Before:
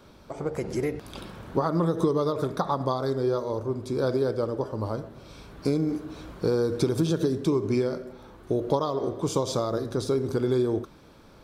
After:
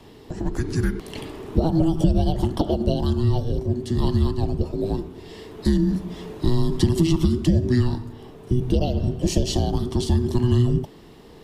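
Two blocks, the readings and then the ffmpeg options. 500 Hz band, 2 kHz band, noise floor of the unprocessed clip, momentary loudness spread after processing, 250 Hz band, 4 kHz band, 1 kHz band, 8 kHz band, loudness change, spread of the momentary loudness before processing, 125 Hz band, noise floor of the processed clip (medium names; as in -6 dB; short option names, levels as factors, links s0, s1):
-1.5 dB, +2.0 dB, -52 dBFS, 12 LU, +5.5 dB, +6.5 dB, -2.0 dB, +4.5 dB, +4.5 dB, 11 LU, +10.0 dB, -46 dBFS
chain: -filter_complex "[0:a]afreqshift=-490,acrossover=split=330|3000[s0][s1][s2];[s1]acompressor=threshold=0.0282:ratio=2[s3];[s0][s3][s2]amix=inputs=3:normalize=0,volume=2"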